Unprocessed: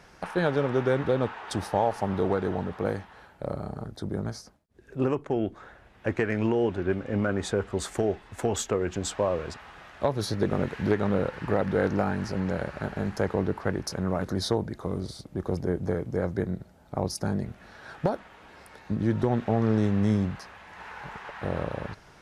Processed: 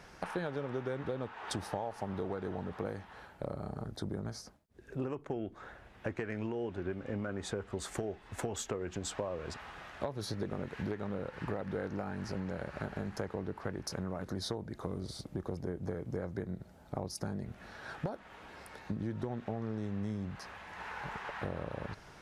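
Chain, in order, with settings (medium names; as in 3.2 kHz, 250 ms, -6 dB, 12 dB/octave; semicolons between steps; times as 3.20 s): compression 6:1, threshold -33 dBFS, peak gain reduction 14 dB; trim -1 dB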